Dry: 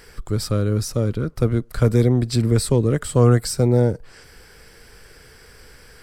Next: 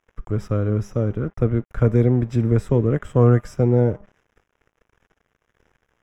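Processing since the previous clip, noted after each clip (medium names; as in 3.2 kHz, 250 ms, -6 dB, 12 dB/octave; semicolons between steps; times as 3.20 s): de-hum 201.9 Hz, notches 36; crossover distortion -41 dBFS; boxcar filter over 10 samples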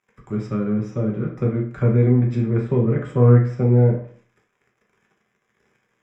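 low-pass that closes with the level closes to 2.6 kHz, closed at -16 dBFS; reverberation RT60 0.50 s, pre-delay 3 ms, DRR -1 dB; trim -2 dB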